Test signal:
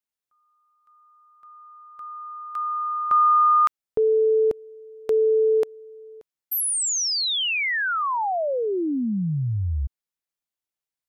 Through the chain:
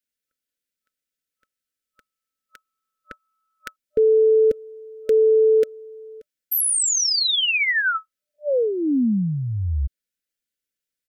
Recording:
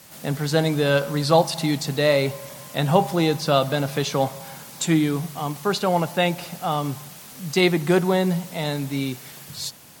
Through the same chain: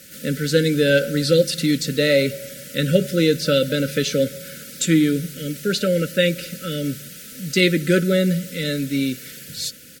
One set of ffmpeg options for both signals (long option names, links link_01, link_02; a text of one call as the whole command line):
ffmpeg -i in.wav -af "aecho=1:1:4:0.38,afftfilt=real='re*(1-between(b*sr/4096,600,1300))':imag='im*(1-between(b*sr/4096,600,1300))':win_size=4096:overlap=0.75,volume=3dB" out.wav